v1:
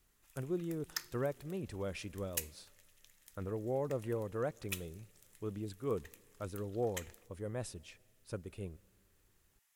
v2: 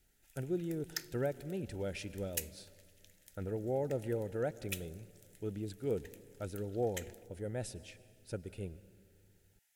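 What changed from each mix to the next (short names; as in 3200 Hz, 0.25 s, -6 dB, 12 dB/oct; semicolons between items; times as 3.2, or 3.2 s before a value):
speech: send +11.0 dB; master: add Butterworth band-stop 1100 Hz, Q 2.5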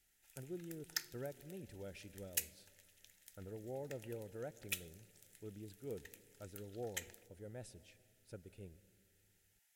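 speech -11.0 dB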